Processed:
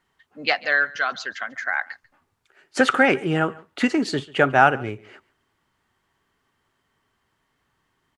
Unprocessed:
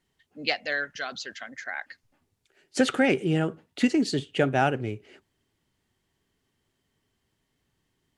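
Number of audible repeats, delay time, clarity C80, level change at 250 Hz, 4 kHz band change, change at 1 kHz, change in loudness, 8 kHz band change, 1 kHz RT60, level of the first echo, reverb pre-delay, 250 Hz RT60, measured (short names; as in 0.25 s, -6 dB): 1, 0.142 s, none, +1.5 dB, +3.0 dB, +9.5 dB, +5.5 dB, +0.5 dB, none, -22.5 dB, none, none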